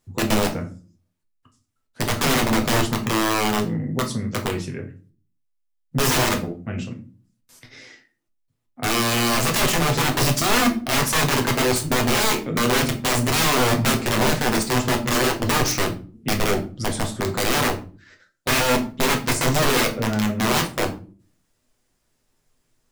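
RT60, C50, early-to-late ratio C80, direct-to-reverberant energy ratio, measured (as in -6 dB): not exponential, 12.0 dB, 18.0 dB, 2.0 dB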